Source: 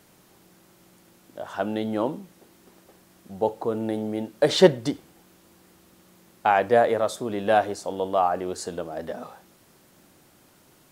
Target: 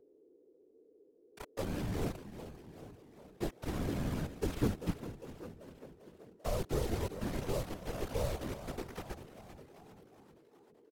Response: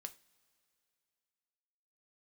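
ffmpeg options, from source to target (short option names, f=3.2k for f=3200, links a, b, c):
-filter_complex "[0:a]aeval=exprs='if(lt(val(0),0),0.251*val(0),val(0))':c=same,acrossover=split=130|1700[a][b][c];[a]alimiter=level_in=5.5dB:limit=-24dB:level=0:latency=1:release=31,volume=-5.5dB[d];[b]asoftclip=type=hard:threshold=-17.5dB[e];[c]acompressor=threshold=-53dB:ratio=12[f];[d][e][f]amix=inputs=3:normalize=0,acrusher=bits=4:mix=0:aa=0.000001,lowshelf=f=210:g=9.5,asplit=2[g][h];[h]asplit=6[i][j][k][l][m][n];[i]adelay=394,afreqshift=62,volume=-13dB[o];[j]adelay=788,afreqshift=124,volume=-17.6dB[p];[k]adelay=1182,afreqshift=186,volume=-22.2dB[q];[l]adelay=1576,afreqshift=248,volume=-26.7dB[r];[m]adelay=1970,afreqshift=310,volume=-31.3dB[s];[n]adelay=2364,afreqshift=372,volume=-35.9dB[t];[o][p][q][r][s][t]amix=inputs=6:normalize=0[u];[g][u]amix=inputs=2:normalize=0,aeval=exprs='val(0)+0.00316*sin(2*PI*540*n/s)':c=same,asetrate=33038,aresample=44100,atempo=1.33484,acrossover=split=280|3000[v][w][x];[w]acompressor=threshold=-24dB:ratio=6[y];[v][y][x]amix=inputs=3:normalize=0,afftfilt=real='hypot(re,im)*cos(2*PI*random(0))':imag='hypot(re,im)*sin(2*PI*random(1))':win_size=512:overlap=0.75,volume=-5dB"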